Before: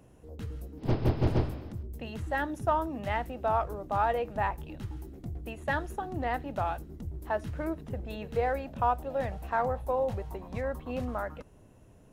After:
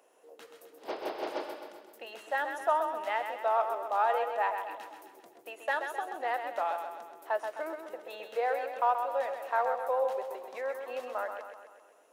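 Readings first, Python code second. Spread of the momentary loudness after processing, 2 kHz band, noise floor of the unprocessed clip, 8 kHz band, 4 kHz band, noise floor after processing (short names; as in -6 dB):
17 LU, +1.0 dB, -56 dBFS, n/a, +1.0 dB, -59 dBFS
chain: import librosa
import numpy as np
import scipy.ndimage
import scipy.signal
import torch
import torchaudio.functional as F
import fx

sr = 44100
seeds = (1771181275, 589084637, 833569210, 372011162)

p1 = scipy.signal.sosfilt(scipy.signal.butter(4, 460.0, 'highpass', fs=sr, output='sos'), x)
y = p1 + fx.echo_feedback(p1, sr, ms=130, feedback_pct=54, wet_db=-7, dry=0)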